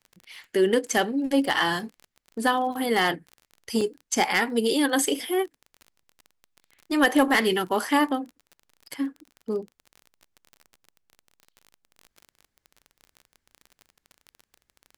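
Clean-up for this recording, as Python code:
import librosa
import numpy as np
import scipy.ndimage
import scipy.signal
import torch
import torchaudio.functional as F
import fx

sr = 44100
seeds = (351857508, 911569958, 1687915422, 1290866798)

y = fx.fix_declip(x, sr, threshold_db=-12.0)
y = fx.fix_declick_ar(y, sr, threshold=6.5)
y = fx.fix_interpolate(y, sr, at_s=(3.81, 6.03), length_ms=3.5)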